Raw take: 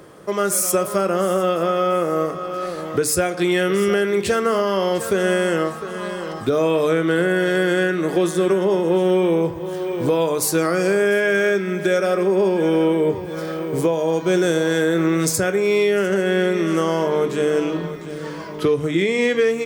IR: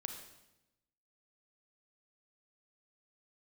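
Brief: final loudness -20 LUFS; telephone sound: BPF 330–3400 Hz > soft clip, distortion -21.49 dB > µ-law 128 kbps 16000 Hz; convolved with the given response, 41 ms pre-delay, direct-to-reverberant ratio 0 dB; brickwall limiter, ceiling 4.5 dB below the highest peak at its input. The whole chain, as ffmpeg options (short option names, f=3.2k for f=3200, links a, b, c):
-filter_complex "[0:a]alimiter=limit=-12.5dB:level=0:latency=1,asplit=2[a][b];[1:a]atrim=start_sample=2205,adelay=41[c];[b][c]afir=irnorm=-1:irlink=0,volume=1.5dB[d];[a][d]amix=inputs=2:normalize=0,highpass=330,lowpass=3.4k,asoftclip=threshold=-11.5dB,volume=1.5dB" -ar 16000 -c:a pcm_mulaw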